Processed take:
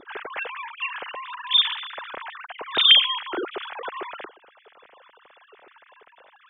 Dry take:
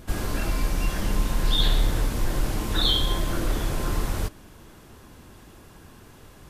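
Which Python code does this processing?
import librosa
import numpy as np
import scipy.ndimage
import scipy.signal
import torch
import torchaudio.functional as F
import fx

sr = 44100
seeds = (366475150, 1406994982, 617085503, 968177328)

y = fx.sine_speech(x, sr)
y = F.gain(torch.from_numpy(y), -3.0).numpy()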